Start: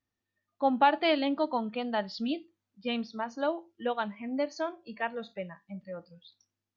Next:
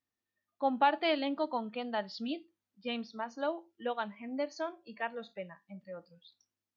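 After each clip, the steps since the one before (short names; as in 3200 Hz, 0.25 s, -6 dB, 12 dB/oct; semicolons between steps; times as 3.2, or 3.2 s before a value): low shelf 120 Hz -10.5 dB; gain -3.5 dB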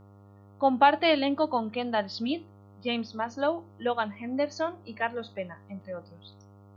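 buzz 100 Hz, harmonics 14, -60 dBFS -6 dB/oct; gain +7 dB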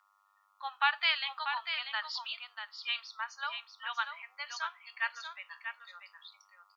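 steep high-pass 1100 Hz 36 dB/oct; echo 0.64 s -7.5 dB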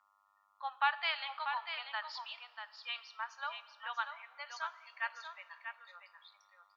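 tilt shelf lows +7.5 dB; on a send at -17 dB: reverb RT60 2.2 s, pre-delay 49 ms; on the sum: gain -1 dB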